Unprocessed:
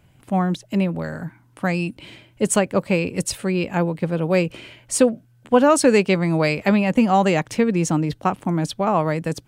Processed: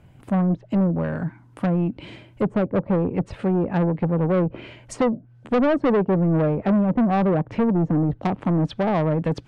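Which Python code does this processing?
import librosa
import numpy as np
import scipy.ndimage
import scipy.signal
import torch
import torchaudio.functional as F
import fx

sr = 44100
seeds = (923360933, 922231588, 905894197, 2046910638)

y = fx.env_lowpass_down(x, sr, base_hz=670.0, full_db=-17.0)
y = fx.high_shelf(y, sr, hz=2100.0, db=fx.steps((0.0, -10.5), (8.28, 4.0)))
y = 10.0 ** (-20.5 / 20.0) * np.tanh(y / 10.0 ** (-20.5 / 20.0))
y = y * librosa.db_to_amplitude(5.0)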